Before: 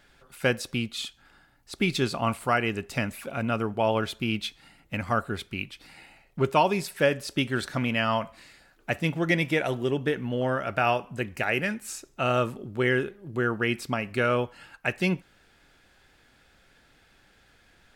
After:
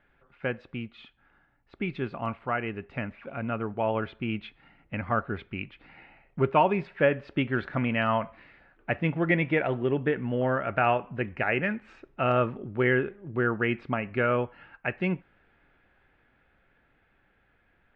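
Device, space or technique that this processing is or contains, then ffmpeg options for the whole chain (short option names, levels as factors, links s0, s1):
action camera in a waterproof case: -af "lowpass=f=2500:w=0.5412,lowpass=f=2500:w=1.3066,dynaudnorm=f=770:g=11:m=2.37,volume=0.501" -ar 44100 -c:a aac -b:a 128k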